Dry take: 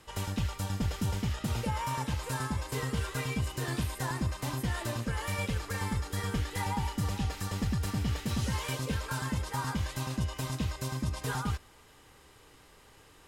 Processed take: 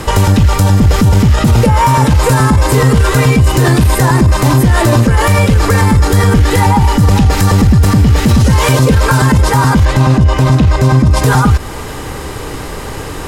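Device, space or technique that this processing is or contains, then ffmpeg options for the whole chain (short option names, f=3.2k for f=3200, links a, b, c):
mastering chain: -filter_complex "[0:a]asettb=1/sr,asplit=3[a][b][c];[a]atrim=end=9.854[d];[b]atrim=start=9.85:end=11.11,asetpts=PTS-STARTPTS,afade=t=in:d=0.004:c=qsin,afade=t=out:st=1.256:d=0.004:c=qsin,aemphasis=mode=reproduction:type=50kf[e];[c]atrim=start=11.106[f];[d][e]acrossfade=d=0.004:c1=hsin:c2=qsin[g];[g][f]acrossfade=d=0.004:c1=qsin:c2=hsin,equalizer=f=3.1k:t=o:w=0.68:g=-3,acompressor=threshold=-39dB:ratio=1.5,asoftclip=type=tanh:threshold=-27.5dB,tiltshelf=f=870:g=3.5,alimiter=level_in=35dB:limit=-1dB:release=50:level=0:latency=1,volume=-1dB"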